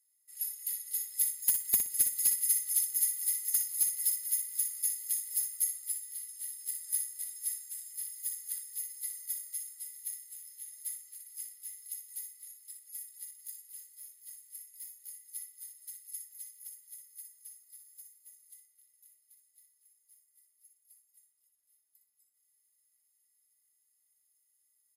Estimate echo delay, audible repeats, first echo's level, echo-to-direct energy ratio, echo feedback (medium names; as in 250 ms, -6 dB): 60 ms, 3, -7.5 dB, -7.5 dB, 22%